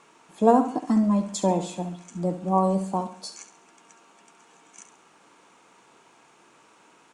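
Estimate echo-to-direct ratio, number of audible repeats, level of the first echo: -10.5 dB, 3, -11.0 dB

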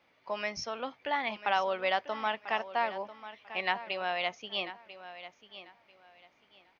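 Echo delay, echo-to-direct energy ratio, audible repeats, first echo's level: 0.993 s, -13.5 dB, 2, -14.0 dB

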